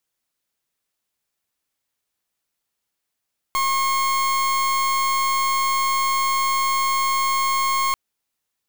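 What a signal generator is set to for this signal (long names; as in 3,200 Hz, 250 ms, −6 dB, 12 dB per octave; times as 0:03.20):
pulse wave 1,080 Hz, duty 38% −20.5 dBFS 4.39 s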